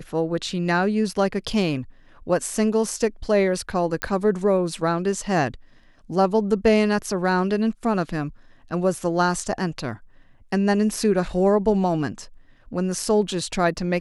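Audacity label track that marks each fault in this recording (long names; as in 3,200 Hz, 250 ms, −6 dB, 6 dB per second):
4.020000	4.020000	click −8 dBFS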